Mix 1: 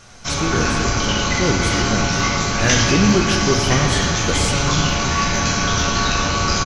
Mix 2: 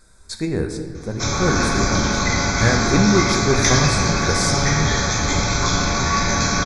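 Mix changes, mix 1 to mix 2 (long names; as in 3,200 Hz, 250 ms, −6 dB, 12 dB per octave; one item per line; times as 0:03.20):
first sound: entry +0.95 s
second sound −9.0 dB
master: add Butterworth band-reject 2,900 Hz, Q 3.3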